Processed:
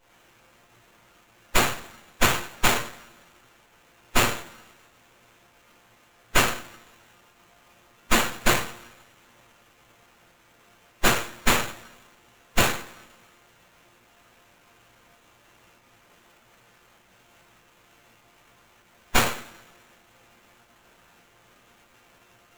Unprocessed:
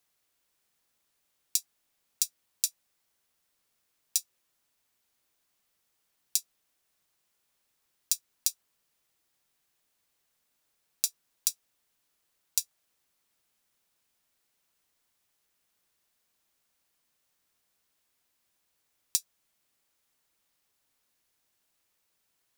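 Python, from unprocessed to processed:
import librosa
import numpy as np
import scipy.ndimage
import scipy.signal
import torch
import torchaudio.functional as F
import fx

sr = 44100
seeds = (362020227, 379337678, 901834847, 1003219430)

p1 = fx.volume_shaper(x, sr, bpm=99, per_beat=1, depth_db=-13, release_ms=67.0, shape='slow start')
p2 = x + (p1 * 10.0 ** (-1.5 / 20.0))
p3 = fx.low_shelf(p2, sr, hz=110.0, db=5.0)
p4 = fx.fold_sine(p3, sr, drive_db=18, ceiling_db=3.0)
p5 = fx.pitch_keep_formants(p4, sr, semitones=-6.0)
p6 = fx.peak_eq(p5, sr, hz=9200.0, db=-8.0, octaves=0.57)
p7 = fx.resonator_bank(p6, sr, root=46, chord='fifth', decay_s=0.24)
p8 = p7 + fx.echo_feedback(p7, sr, ms=94, feedback_pct=25, wet_db=-14.0, dry=0)
p9 = fx.rev_double_slope(p8, sr, seeds[0], early_s=0.41, late_s=1.8, knee_db=-25, drr_db=-7.0)
p10 = fx.running_max(p9, sr, window=9)
y = p10 * 10.0 ** (2.5 / 20.0)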